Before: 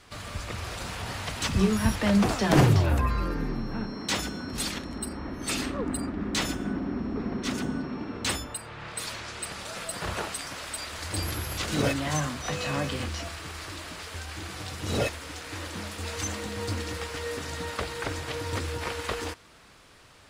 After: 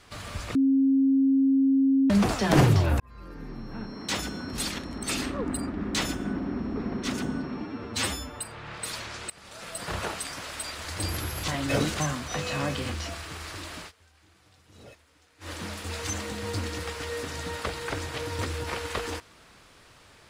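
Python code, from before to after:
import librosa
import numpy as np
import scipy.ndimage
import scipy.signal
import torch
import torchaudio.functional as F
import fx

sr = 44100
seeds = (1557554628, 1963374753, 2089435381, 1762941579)

y = fx.edit(x, sr, fx.bleep(start_s=0.55, length_s=1.55, hz=270.0, db=-18.0),
    fx.fade_in_span(start_s=3.0, length_s=1.34),
    fx.cut(start_s=5.03, length_s=0.4),
    fx.stretch_span(start_s=8.01, length_s=0.52, factor=1.5),
    fx.fade_in_from(start_s=9.44, length_s=0.6, floor_db=-19.0),
    fx.reverse_span(start_s=11.62, length_s=0.52),
    fx.fade_down_up(start_s=13.93, length_s=1.74, db=-22.5, fade_s=0.13, curve='qsin'), tone=tone)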